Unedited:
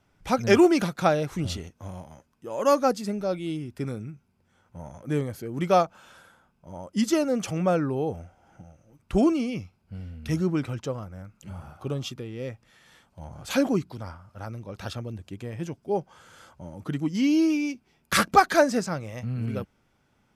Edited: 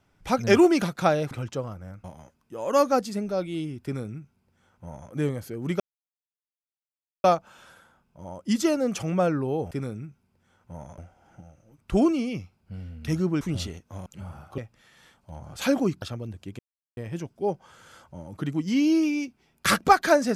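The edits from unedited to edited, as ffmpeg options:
-filter_complex "[0:a]asplit=11[a][b][c][d][e][f][g][h][i][j][k];[a]atrim=end=1.312[l];[b]atrim=start=10.618:end=11.352[m];[c]atrim=start=1.958:end=5.72,asetpts=PTS-STARTPTS,afade=t=out:st=3.758:d=0.004:c=hsin,apad=pad_dur=1.44[n];[d]atrim=start=5.72:end=8.192,asetpts=PTS-STARTPTS,afade=t=in:d=0.004:c=hsin[o];[e]atrim=start=3.758:end=5.032[p];[f]atrim=start=8.188:end=10.622[q];[g]atrim=start=1.308:end=1.962[r];[h]atrim=start=11.348:end=11.872[s];[i]atrim=start=12.468:end=13.912[t];[j]atrim=start=14.868:end=15.44,asetpts=PTS-STARTPTS,afade=t=out:st=0.568:d=0.004:c=hsin,apad=pad_dur=0.38[u];[k]atrim=start=15.44,asetpts=PTS-STARTPTS,afade=t=in:d=0.004:c=hsin[v];[l][m]acrossfade=d=0.004:c1=hsin:c2=hsin[w];[n][o]concat=n=2:v=0:a=1[x];[w][x]acrossfade=d=0.004:c1=hsin:c2=hsin[y];[y][p]acrossfade=d=0.004:c1=hsin:c2=hsin[z];[z][q]acrossfade=d=0.004:c1=hsin:c2=hsin[aa];[aa][r]acrossfade=d=0.004:c1=hsin:c2=hsin[ab];[ab][s]acrossfade=d=0.004:c1=hsin:c2=hsin[ac];[ac][t]acrossfade=d=0.004:c1=hsin:c2=hsin[ad];[u][v]concat=n=2:v=0:a=1[ae];[ad][ae]acrossfade=d=0.004:c1=hsin:c2=hsin"

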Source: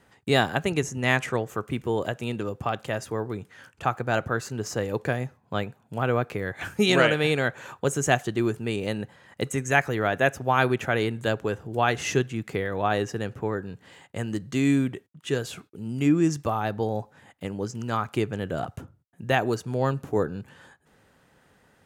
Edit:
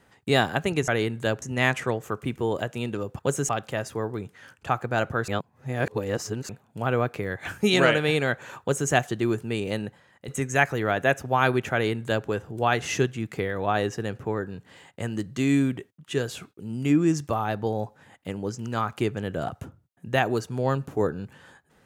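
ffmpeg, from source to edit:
-filter_complex "[0:a]asplit=8[a][b][c][d][e][f][g][h];[a]atrim=end=0.882[i];[b]atrim=start=10.888:end=11.432[j];[c]atrim=start=0.878:end=2.652[k];[d]atrim=start=7.768:end=8.072[l];[e]atrim=start=2.648:end=4.442[m];[f]atrim=start=4.438:end=5.652,asetpts=PTS-STARTPTS,areverse[n];[g]atrim=start=5.648:end=9.44,asetpts=PTS-STARTPTS,afade=t=out:st=3.302:d=0.49:silence=0.223872[o];[h]atrim=start=9.44,asetpts=PTS-STARTPTS,afade=t=in:d=0.004:c=hsin:silence=0.223872[p];[i][j]acrossfade=d=0.004:c1=hsin:c2=hsin[q];[q][k]acrossfade=d=0.004:c1=hsin:c2=hsin[r];[r][l]acrossfade=d=0.004:c1=hsin:c2=hsin[s];[s][m]acrossfade=d=0.004:c1=hsin:c2=hsin[t];[t][n]acrossfade=d=0.004:c1=hsin:c2=hsin[u];[o][p]concat=n=2:v=0:a=1[v];[u][v]acrossfade=d=0.004:c1=hsin:c2=hsin"

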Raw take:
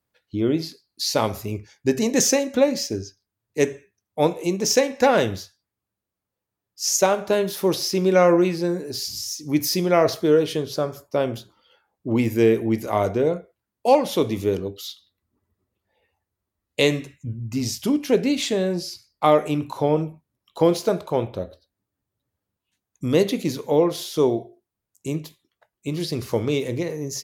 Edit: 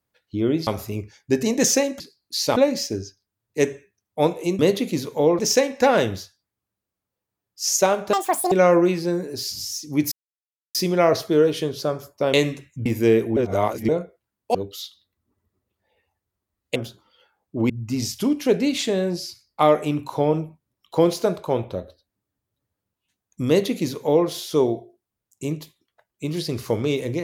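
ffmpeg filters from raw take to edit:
-filter_complex "[0:a]asplit=16[a][b][c][d][e][f][g][h][i][j][k][l][m][n][o][p];[a]atrim=end=0.672[q];[b]atrim=start=1.228:end=2.562[r];[c]atrim=start=0.668:end=1.232[s];[d]atrim=start=2.558:end=4.592[t];[e]atrim=start=23.108:end=23.912[u];[f]atrim=start=4.588:end=7.334[v];[g]atrim=start=7.33:end=8.08,asetpts=PTS-STARTPTS,asetrate=85554,aresample=44100[w];[h]atrim=start=8.076:end=9.68,asetpts=PTS-STARTPTS,afade=t=out:st=1.6:d=0.004:c=hsin,apad=pad_dur=0.63[x];[i]atrim=start=9.68:end=11.272,asetpts=PTS-STARTPTS,afade=t=in:d=0.004:c=hsin[y];[j]atrim=start=16.808:end=17.332[z];[k]atrim=start=12.208:end=12.722[aa];[l]atrim=start=12.718:end=13.242,asetpts=PTS-STARTPTS,areverse[ab];[m]atrim=start=13.238:end=13.902[ac];[n]atrim=start=14.598:end=16.812[ad];[o]atrim=start=11.268:end=12.212[ae];[p]atrim=start=17.328[af];[q][r]acrossfade=d=0.004:c1=hsin:c2=hsin[ag];[ag][s]acrossfade=d=0.004:c1=hsin:c2=hsin[ah];[ah][t]acrossfade=d=0.004:c1=hsin:c2=hsin[ai];[ai][u]acrossfade=d=0.004:c1=hsin:c2=hsin[aj];[aj][v]acrossfade=d=0.004:c1=hsin:c2=hsin[ak];[ak][w]acrossfade=d=0.004:c1=hsin:c2=hsin[al];[x][y]concat=n=2:v=0:a=1[am];[al][am]acrossfade=d=0.004:c1=hsin:c2=hsin[an];[an][z]acrossfade=d=0.004:c1=hsin:c2=hsin[ao];[ao][aa]acrossfade=d=0.004:c1=hsin:c2=hsin[ap];[ap][ab]acrossfade=d=0.004:c1=hsin:c2=hsin[aq];[aq][ac]acrossfade=d=0.004:c1=hsin:c2=hsin[ar];[ar][ad]acrossfade=d=0.004:c1=hsin:c2=hsin[as];[as][ae]acrossfade=d=0.004:c1=hsin:c2=hsin[at];[at][af]acrossfade=d=0.004:c1=hsin:c2=hsin"

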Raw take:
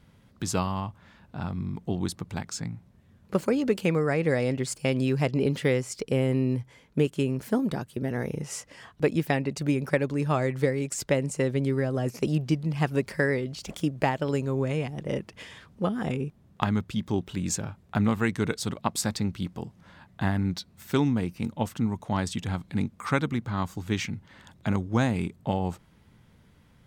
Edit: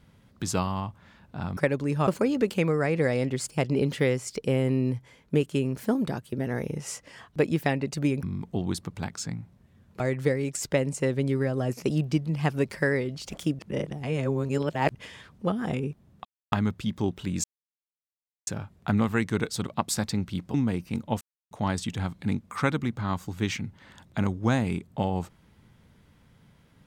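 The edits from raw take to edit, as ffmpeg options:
-filter_complex "[0:a]asplit=13[a][b][c][d][e][f][g][h][i][j][k][l][m];[a]atrim=end=1.572[n];[b]atrim=start=9.868:end=10.372[o];[c]atrim=start=3.338:end=4.852[p];[d]atrim=start=5.218:end=9.872[q];[e]atrim=start=1.568:end=3.342[r];[f]atrim=start=10.368:end=13.962[s];[g]atrim=start=13.958:end=15.322,asetpts=PTS-STARTPTS,areverse[t];[h]atrim=start=15.318:end=16.62,asetpts=PTS-STARTPTS,afade=t=out:st=1.298:d=0.004:c=hsin,apad=pad_dur=0.27[u];[i]atrim=start=16.62:end=17.54,asetpts=PTS-STARTPTS,afade=t=in:d=0.004:c=hsin,afade=t=out:st=0.916:d=0.004:c=hsin,apad=pad_dur=1.03[v];[j]atrim=start=17.54:end=19.612,asetpts=PTS-STARTPTS,afade=t=in:d=0.004:c=hsin[w];[k]atrim=start=21.028:end=21.7,asetpts=PTS-STARTPTS,afade=t=out:st=0.668:d=0.004:c=hsin[x];[l]atrim=start=21.7:end=22,asetpts=PTS-STARTPTS,volume=0[y];[m]atrim=start=22,asetpts=PTS-STARTPTS,afade=t=in:d=0.004:c=hsin[z];[n][o]acrossfade=d=0.004:c1=hsin:c2=hsin[aa];[aa][p]acrossfade=d=0.004:c1=hsin:c2=hsin[ab];[ab][q]acrossfade=d=0.004:c1=hsin:c2=hsin[ac];[ac][r]acrossfade=d=0.004:c1=hsin:c2=hsin[ad];[ad][s]acrossfade=d=0.004:c1=hsin:c2=hsin[ae];[ae][t]acrossfade=d=0.004:c1=hsin:c2=hsin[af];[u][v][w]concat=n=3:v=0:a=1[ag];[af][ag]acrossfade=d=0.004:c1=hsin:c2=hsin[ah];[x][y][z]concat=n=3:v=0:a=1[ai];[ah][ai]acrossfade=d=0.004:c1=hsin:c2=hsin"

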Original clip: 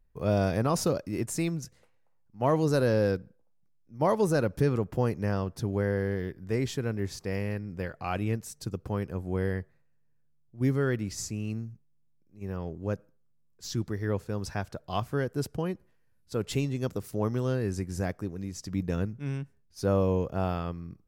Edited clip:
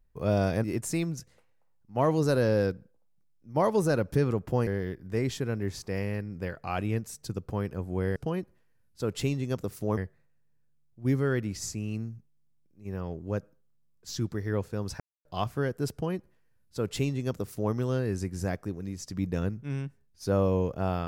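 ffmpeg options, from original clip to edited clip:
-filter_complex "[0:a]asplit=7[a][b][c][d][e][f][g];[a]atrim=end=0.642[h];[b]atrim=start=1.088:end=5.122[i];[c]atrim=start=6.038:end=9.532[j];[d]atrim=start=15.478:end=17.292[k];[e]atrim=start=9.528:end=14.56,asetpts=PTS-STARTPTS,afade=t=out:st=5.028:d=0.004:c=hsin[l];[f]atrim=start=14.56:end=14.81,asetpts=PTS-STARTPTS,volume=0[m];[g]atrim=start=14.81,asetpts=PTS-STARTPTS,afade=t=in:d=0.004:c=hsin[n];[h][i]acrossfade=d=0.004:c1=hsin:c2=hsin[o];[o][j]acrossfade=d=0.004:c1=hsin:c2=hsin[p];[p][k]acrossfade=d=0.004:c1=hsin:c2=hsin[q];[l][m][n]concat=n=3:v=0:a=1[r];[q][r]acrossfade=d=0.004:c1=hsin:c2=hsin"

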